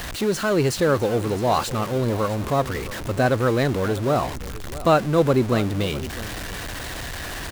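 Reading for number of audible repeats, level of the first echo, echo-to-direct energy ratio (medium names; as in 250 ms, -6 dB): 1, -16.0 dB, -16.0 dB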